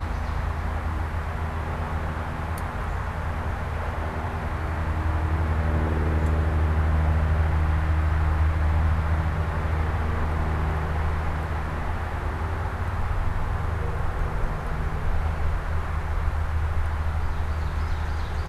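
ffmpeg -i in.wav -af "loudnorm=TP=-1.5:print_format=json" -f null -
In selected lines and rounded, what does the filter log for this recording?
"input_i" : "-27.3",
"input_tp" : "-11.3",
"input_lra" : "5.3",
"input_thresh" : "-37.3",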